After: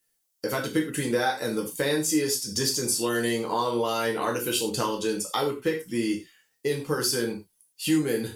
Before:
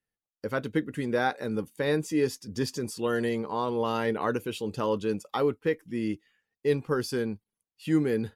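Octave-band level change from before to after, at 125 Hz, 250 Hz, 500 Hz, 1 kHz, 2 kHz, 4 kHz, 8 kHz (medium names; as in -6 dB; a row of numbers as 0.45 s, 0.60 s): -0.5 dB, +1.5 dB, +0.5 dB, +2.5 dB, +3.5 dB, +10.5 dB, +16.0 dB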